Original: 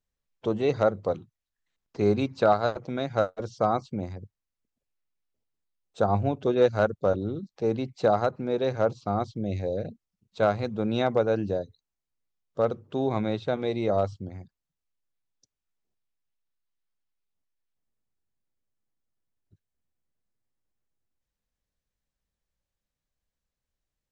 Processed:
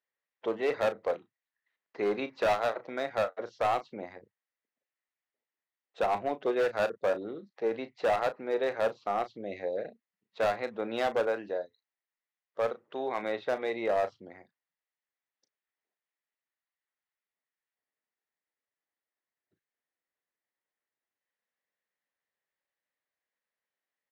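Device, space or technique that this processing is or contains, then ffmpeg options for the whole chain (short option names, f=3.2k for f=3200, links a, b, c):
megaphone: -filter_complex "[0:a]asettb=1/sr,asplit=3[a][b][c];[a]atrim=end=11.294[d];[b]atrim=start=11.29:end=13.23,asetpts=PTS-STARTPTS,afade=t=in:d=0.004:c=qsin,afade=t=out:st=1.936:d=0.004:c=qsin,lowshelf=f=480:g=-5[e];[c]atrim=start=13.226[f];[d][e]acrossfade=d=0.004:c1=hsin:c2=qsin[g];[g][f]acrossfade=d=0.004:c1=qsin:c2=hsin,highpass=460,lowpass=3k,equalizer=f=1.9k:t=o:w=0.3:g=9.5,asoftclip=type=hard:threshold=-22.5dB,asplit=2[h][i];[i]adelay=35,volume=-12dB[j];[h][j]amix=inputs=2:normalize=0"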